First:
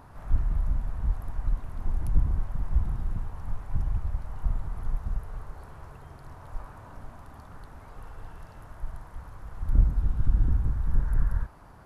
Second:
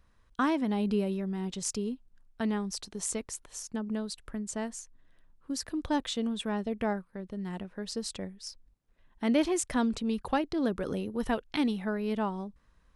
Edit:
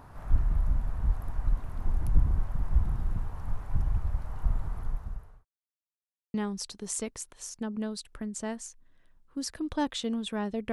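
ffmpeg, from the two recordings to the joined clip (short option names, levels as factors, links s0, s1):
-filter_complex "[0:a]apad=whole_dur=10.72,atrim=end=10.72,asplit=2[s0][s1];[s0]atrim=end=5.45,asetpts=PTS-STARTPTS,afade=t=out:st=4.69:d=0.76[s2];[s1]atrim=start=5.45:end=6.34,asetpts=PTS-STARTPTS,volume=0[s3];[1:a]atrim=start=2.47:end=6.85,asetpts=PTS-STARTPTS,afade=t=in:d=0.004:c=hsin[s4];[s2][s3][s4]concat=n=3:v=0:a=1"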